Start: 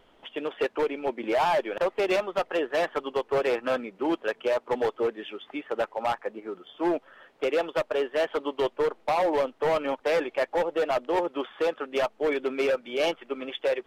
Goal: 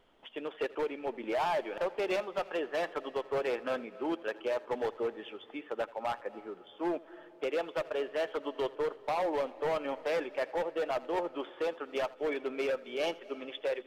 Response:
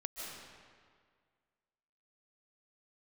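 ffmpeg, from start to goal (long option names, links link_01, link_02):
-filter_complex "[0:a]asplit=2[link_01][link_02];[1:a]atrim=start_sample=2205,adelay=82[link_03];[link_02][link_03]afir=irnorm=-1:irlink=0,volume=-16.5dB[link_04];[link_01][link_04]amix=inputs=2:normalize=0,volume=-7dB"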